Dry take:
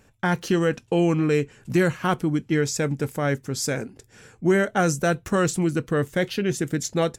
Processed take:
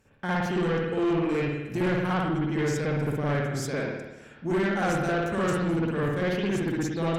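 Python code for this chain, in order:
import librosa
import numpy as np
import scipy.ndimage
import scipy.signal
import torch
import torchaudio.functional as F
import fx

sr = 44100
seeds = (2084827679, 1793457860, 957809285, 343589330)

y = fx.rev_spring(x, sr, rt60_s=1.0, pass_ms=(55,), chirp_ms=65, drr_db=-8.5)
y = fx.cheby_harmonics(y, sr, harmonics=(8,), levels_db=(-30,), full_scale_db=0.5)
y = 10.0 ** (-12.0 / 20.0) * np.tanh(y / 10.0 ** (-12.0 / 20.0))
y = y * librosa.db_to_amplitude(-9.0)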